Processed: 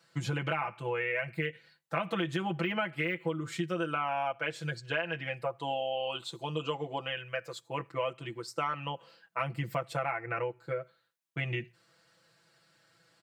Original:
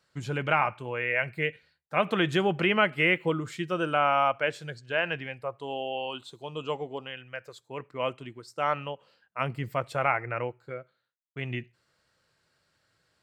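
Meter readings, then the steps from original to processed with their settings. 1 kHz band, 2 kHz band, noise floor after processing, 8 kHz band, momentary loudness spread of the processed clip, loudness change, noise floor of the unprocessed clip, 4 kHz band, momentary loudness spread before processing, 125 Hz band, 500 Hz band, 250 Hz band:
−5.5 dB, −6.0 dB, −70 dBFS, +1.5 dB, 7 LU, −6.0 dB, −75 dBFS, −3.5 dB, 17 LU, −1.5 dB, −4.5 dB, −4.0 dB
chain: de-essing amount 80%
high-pass filter 110 Hz
notch filter 400 Hz, Q 12
comb filter 6 ms, depth 95%
downward compressor 6 to 1, threshold −32 dBFS, peak gain reduction 15.5 dB
level +2.5 dB

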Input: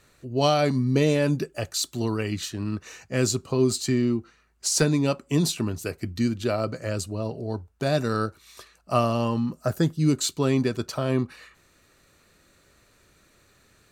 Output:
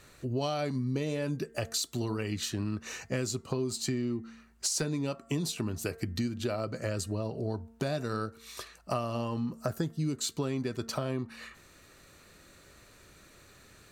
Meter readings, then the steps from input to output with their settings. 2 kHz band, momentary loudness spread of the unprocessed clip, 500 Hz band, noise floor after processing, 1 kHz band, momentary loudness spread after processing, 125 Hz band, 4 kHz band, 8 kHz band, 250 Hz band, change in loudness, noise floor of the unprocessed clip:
−7.5 dB, 9 LU, −9.0 dB, −58 dBFS, −9.0 dB, 5 LU, −8.0 dB, −6.5 dB, −6.0 dB, −8.5 dB, −8.0 dB, −61 dBFS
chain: hum removal 227.2 Hz, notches 9
downward compressor 6 to 1, threshold −33 dBFS, peak gain reduction 16 dB
level +3.5 dB

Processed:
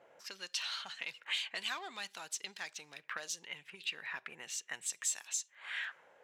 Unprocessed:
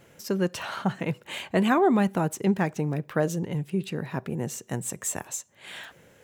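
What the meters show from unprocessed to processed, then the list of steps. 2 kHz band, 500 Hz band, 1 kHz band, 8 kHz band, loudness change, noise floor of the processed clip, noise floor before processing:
−5.0 dB, −27.5 dB, −18.0 dB, −3.5 dB, −12.0 dB, −69 dBFS, −57 dBFS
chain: tilt shelving filter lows −6.5 dB, about 690 Hz
in parallel at −5 dB: soft clipping −27 dBFS, distortion −6 dB
on the sum: envelope filter 590–4,400 Hz, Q 2, up, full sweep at −24 dBFS
level −3.5 dB

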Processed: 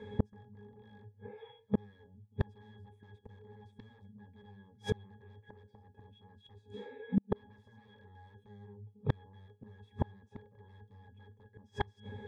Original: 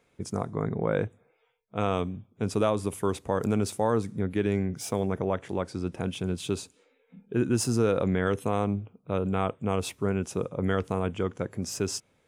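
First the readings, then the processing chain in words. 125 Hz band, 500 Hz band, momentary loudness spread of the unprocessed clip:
−10.5 dB, −17.5 dB, 7 LU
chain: sine wavefolder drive 20 dB, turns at −12.5 dBFS
resonances in every octave G#, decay 0.16 s
gate with flip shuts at −25 dBFS, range −39 dB
level +8.5 dB

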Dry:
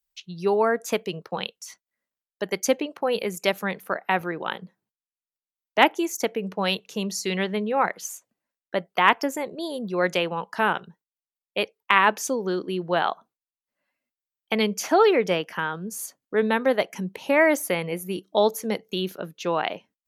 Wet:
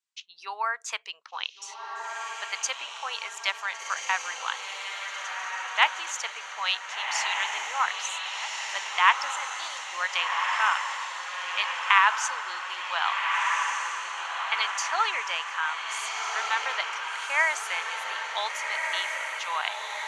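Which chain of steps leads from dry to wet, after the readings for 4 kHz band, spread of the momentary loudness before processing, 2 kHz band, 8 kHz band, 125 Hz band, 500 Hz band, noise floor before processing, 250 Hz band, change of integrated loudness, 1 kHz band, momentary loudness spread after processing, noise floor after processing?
+2.0 dB, 13 LU, +1.5 dB, +1.0 dB, below −40 dB, −19.5 dB, below −85 dBFS, below −35 dB, −3.0 dB, −1.0 dB, 10 LU, −43 dBFS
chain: Chebyshev band-pass filter 1,000–7,900 Hz, order 3
feedback delay with all-pass diffusion 1,503 ms, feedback 57%, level −3 dB

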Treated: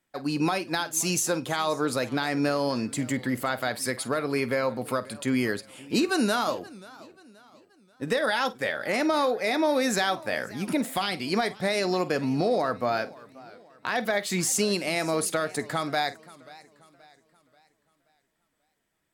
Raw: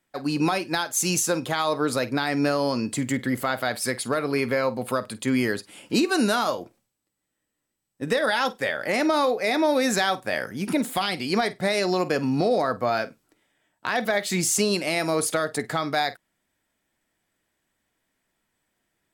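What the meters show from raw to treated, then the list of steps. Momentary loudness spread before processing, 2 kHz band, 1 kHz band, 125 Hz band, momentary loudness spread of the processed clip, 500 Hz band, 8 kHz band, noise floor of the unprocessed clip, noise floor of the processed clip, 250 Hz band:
6 LU, −2.5 dB, −2.5 dB, −2.5 dB, 7 LU, −2.5 dB, −2.5 dB, −80 dBFS, −74 dBFS, −2.5 dB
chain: feedback echo with a swinging delay time 531 ms, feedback 42%, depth 154 cents, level −21 dB
level −2.5 dB

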